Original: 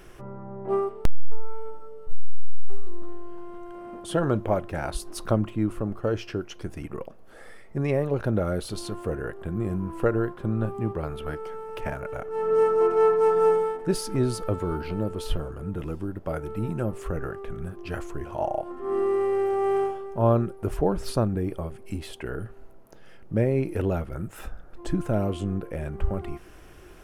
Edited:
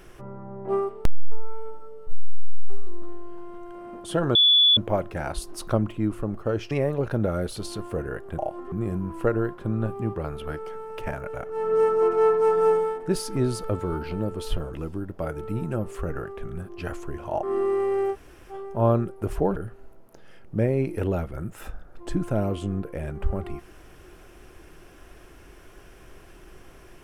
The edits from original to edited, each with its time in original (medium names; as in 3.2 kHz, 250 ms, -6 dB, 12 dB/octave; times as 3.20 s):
4.35 s: add tone 3.44 kHz -13.5 dBFS 0.42 s
6.29–7.84 s: delete
15.53–15.81 s: delete
18.50–18.84 s: move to 9.51 s
19.54–19.93 s: room tone, crossfade 0.06 s
20.97–22.34 s: delete